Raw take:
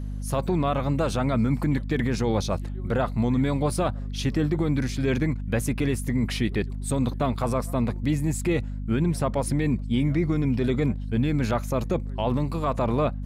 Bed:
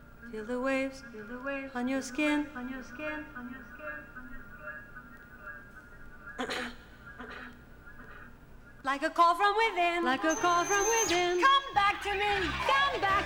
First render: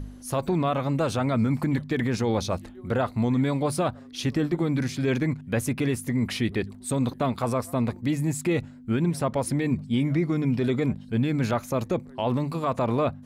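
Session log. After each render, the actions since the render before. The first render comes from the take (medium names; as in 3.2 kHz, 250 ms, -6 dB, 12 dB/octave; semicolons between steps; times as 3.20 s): de-hum 50 Hz, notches 4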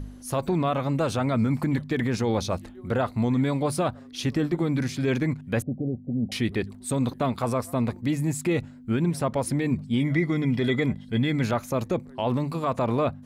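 5.62–6.32 s: rippled Chebyshev low-pass 780 Hz, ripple 6 dB; 10.00–11.43 s: small resonant body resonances 2/3.3 kHz, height 18 dB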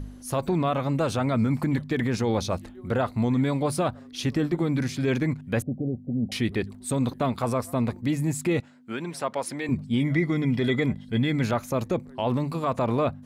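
8.60–9.69 s: frequency weighting A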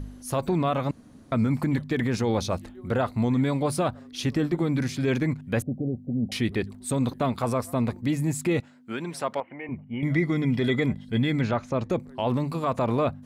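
0.91–1.32 s: room tone; 9.40–10.03 s: rippled Chebyshev low-pass 3 kHz, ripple 9 dB; 11.41–11.90 s: distance through air 120 m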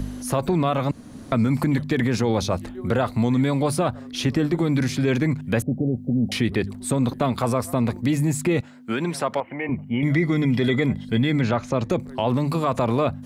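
in parallel at +0.5 dB: peak limiter -23.5 dBFS, peak gain reduction 10.5 dB; on the sum: three bands compressed up and down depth 40%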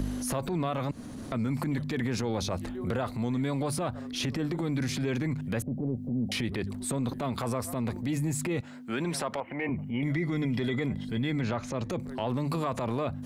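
compression 6:1, threshold -26 dBFS, peak gain reduction 10 dB; transient shaper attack -7 dB, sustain +3 dB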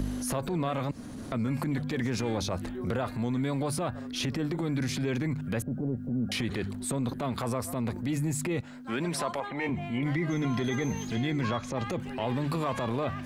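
add bed -14.5 dB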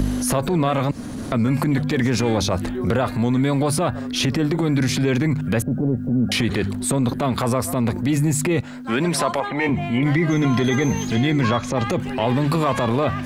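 trim +10.5 dB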